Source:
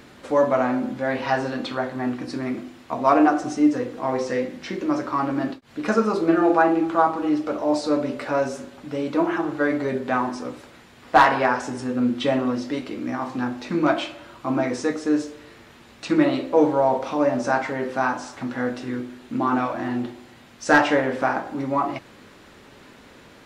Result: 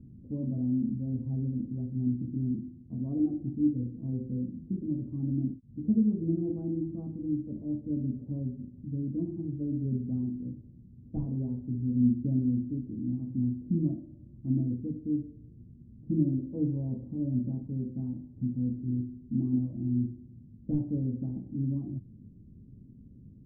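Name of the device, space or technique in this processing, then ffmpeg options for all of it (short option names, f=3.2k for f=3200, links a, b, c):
the neighbour's flat through the wall: -af "lowpass=f=210:w=0.5412,lowpass=f=210:w=1.3066,equalizer=f=110:t=o:w=0.59:g=4,volume=3.5dB"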